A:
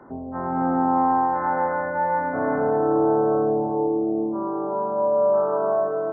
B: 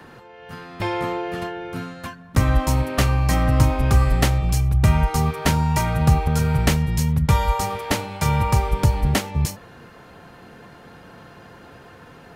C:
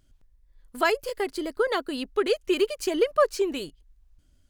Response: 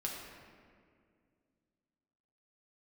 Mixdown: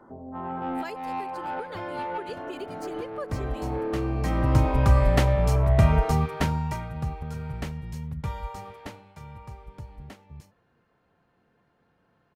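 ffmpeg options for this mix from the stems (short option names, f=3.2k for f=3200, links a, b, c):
-filter_complex "[0:a]flanger=delay=8.9:depth=1.6:regen=-41:speed=1.3:shape=sinusoidal,asoftclip=type=tanh:threshold=-22.5dB,volume=-2dB[a];[1:a]highshelf=f=4.3k:g=-10,adelay=950,volume=-2.5dB,afade=t=in:st=3.98:d=0.76:silence=0.281838,afade=t=out:st=6.14:d=0.76:silence=0.251189,afade=t=out:st=8.69:d=0.51:silence=0.354813[b];[2:a]volume=-15dB,asplit=2[c][d];[d]apad=whole_len=270245[e];[a][e]sidechaincompress=threshold=-43dB:ratio=8:attack=16:release=390[f];[f][b][c]amix=inputs=3:normalize=0"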